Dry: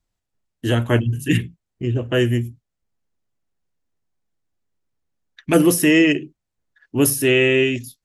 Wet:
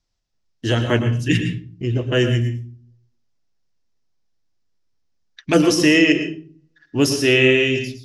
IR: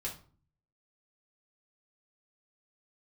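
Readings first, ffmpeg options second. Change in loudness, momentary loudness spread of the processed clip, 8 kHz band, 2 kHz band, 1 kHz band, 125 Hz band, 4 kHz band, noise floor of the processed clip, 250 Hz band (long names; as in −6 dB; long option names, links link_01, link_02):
+0.5 dB, 14 LU, −3.5 dB, +2.0 dB, +1.0 dB, +1.0 dB, +4.0 dB, −70 dBFS, 0.0 dB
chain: -filter_complex "[0:a]lowpass=frequency=5400:width_type=q:width=3.2,bandreject=frequency=80.53:width_type=h:width=4,bandreject=frequency=161.06:width_type=h:width=4,bandreject=frequency=241.59:width_type=h:width=4,bandreject=frequency=322.12:width_type=h:width=4,bandreject=frequency=402.65:width_type=h:width=4,asplit=2[link_01][link_02];[1:a]atrim=start_sample=2205,adelay=108[link_03];[link_02][link_03]afir=irnorm=-1:irlink=0,volume=-8.5dB[link_04];[link_01][link_04]amix=inputs=2:normalize=0"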